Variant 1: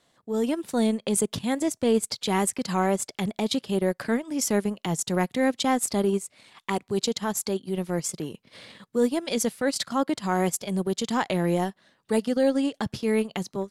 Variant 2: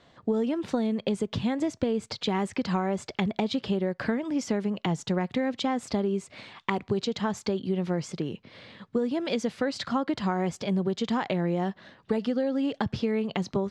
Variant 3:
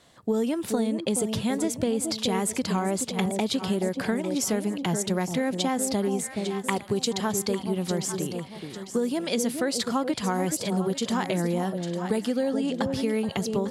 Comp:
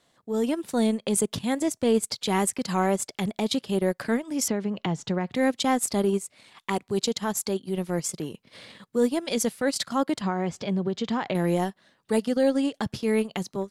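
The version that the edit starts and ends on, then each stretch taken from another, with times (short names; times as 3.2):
1
4.48–5.35 from 2
10.21–11.35 from 2
not used: 3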